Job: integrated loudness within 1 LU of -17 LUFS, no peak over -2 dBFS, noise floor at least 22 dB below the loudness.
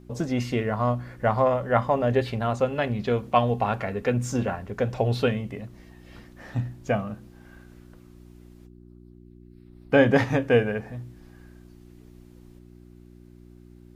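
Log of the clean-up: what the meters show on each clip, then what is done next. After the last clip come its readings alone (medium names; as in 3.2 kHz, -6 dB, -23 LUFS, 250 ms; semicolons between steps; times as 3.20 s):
hum 60 Hz; highest harmonic 360 Hz; hum level -43 dBFS; loudness -25.0 LUFS; peak level -6.0 dBFS; loudness target -17.0 LUFS
-> de-hum 60 Hz, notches 6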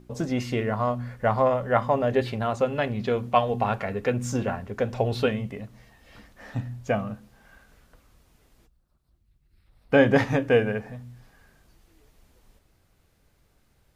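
hum not found; loudness -25.5 LUFS; peak level -6.0 dBFS; loudness target -17.0 LUFS
-> trim +8.5 dB; peak limiter -2 dBFS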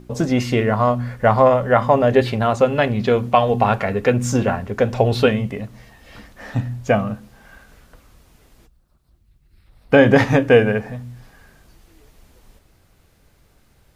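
loudness -17.5 LUFS; peak level -2.0 dBFS; noise floor -57 dBFS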